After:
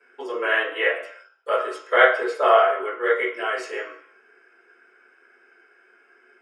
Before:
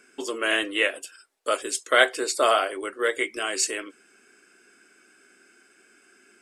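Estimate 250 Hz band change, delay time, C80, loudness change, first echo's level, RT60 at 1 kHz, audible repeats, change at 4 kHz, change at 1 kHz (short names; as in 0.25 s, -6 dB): -2.5 dB, none, 10.0 dB, +3.0 dB, none, 0.65 s, none, -5.5 dB, +5.0 dB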